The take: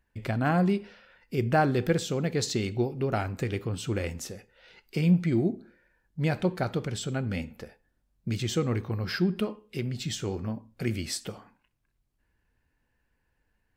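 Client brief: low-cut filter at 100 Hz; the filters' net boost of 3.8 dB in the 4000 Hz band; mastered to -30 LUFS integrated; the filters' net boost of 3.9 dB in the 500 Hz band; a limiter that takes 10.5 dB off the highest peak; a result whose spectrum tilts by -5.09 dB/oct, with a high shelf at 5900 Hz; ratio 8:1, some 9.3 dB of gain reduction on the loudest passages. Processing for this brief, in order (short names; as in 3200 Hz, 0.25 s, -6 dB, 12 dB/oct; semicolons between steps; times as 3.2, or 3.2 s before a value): HPF 100 Hz; bell 500 Hz +5 dB; bell 4000 Hz +6.5 dB; high shelf 5900 Hz -5 dB; compressor 8:1, threshold -26 dBFS; gain +6.5 dB; limiter -19 dBFS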